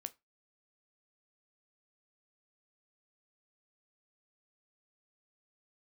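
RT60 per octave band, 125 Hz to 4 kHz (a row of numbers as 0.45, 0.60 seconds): 0.25, 0.20, 0.20, 0.20, 0.20, 0.20 seconds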